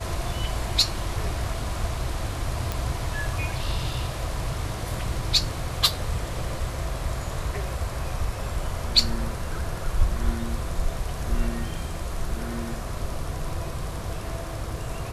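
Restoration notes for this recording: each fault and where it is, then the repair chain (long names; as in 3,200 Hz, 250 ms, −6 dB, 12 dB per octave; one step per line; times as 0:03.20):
0:02.72: click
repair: click removal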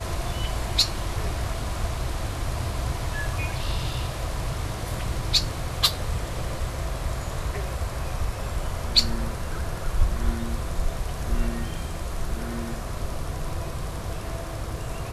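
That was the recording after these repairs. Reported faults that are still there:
none of them is left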